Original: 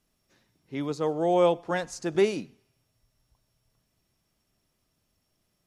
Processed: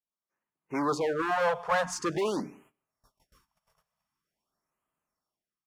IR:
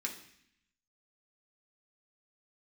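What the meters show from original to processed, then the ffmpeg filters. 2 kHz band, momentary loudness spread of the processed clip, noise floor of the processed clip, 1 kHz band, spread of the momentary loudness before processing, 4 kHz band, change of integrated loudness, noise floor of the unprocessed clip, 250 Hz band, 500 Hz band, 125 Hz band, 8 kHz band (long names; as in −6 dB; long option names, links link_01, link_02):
+4.5 dB, 9 LU, below −85 dBFS, +2.0 dB, 12 LU, −1.0 dB, −2.5 dB, −76 dBFS, −3.5 dB, −4.5 dB, −5.5 dB, +3.0 dB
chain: -filter_complex "[0:a]equalizer=frequency=94:width_type=o:width=0.57:gain=-11.5,bandreject=frequency=4000:width=12,dynaudnorm=framelen=260:gausssize=5:maxgain=16.5dB,bandreject=frequency=60:width_type=h:width=6,bandreject=frequency=120:width_type=h:width=6,bandreject=frequency=180:width_type=h:width=6,bandreject=frequency=240:width_type=h:width=6,bandreject=frequency=300:width_type=h:width=6,acompressor=threshold=-16dB:ratio=3,agate=range=-23dB:threshold=-54dB:ratio=16:detection=peak,asoftclip=type=hard:threshold=-22dB,highpass=frequency=69:poles=1,equalizer=frequency=1100:width_type=o:width=1.3:gain=12.5,asplit=2[link_01][link_02];[link_02]adelay=163.3,volume=-28dB,highshelf=frequency=4000:gain=-3.67[link_03];[link_01][link_03]amix=inputs=2:normalize=0,afftfilt=real='re*(1-between(b*sr/1024,280*pow(4800/280,0.5+0.5*sin(2*PI*0.46*pts/sr))/1.41,280*pow(4800/280,0.5+0.5*sin(2*PI*0.46*pts/sr))*1.41))':imag='im*(1-between(b*sr/1024,280*pow(4800/280,0.5+0.5*sin(2*PI*0.46*pts/sr))/1.41,280*pow(4800/280,0.5+0.5*sin(2*PI*0.46*pts/sr))*1.41))':win_size=1024:overlap=0.75,volume=-6dB"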